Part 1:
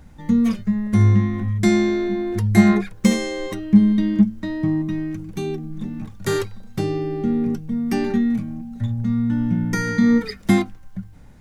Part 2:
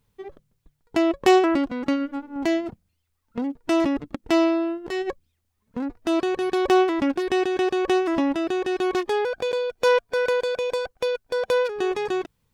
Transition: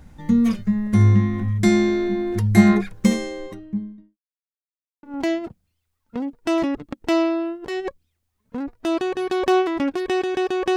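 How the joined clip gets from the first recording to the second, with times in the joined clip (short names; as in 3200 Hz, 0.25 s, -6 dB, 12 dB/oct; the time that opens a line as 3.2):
part 1
2.76–4.18 studio fade out
4.18–5.03 mute
5.03 switch to part 2 from 2.25 s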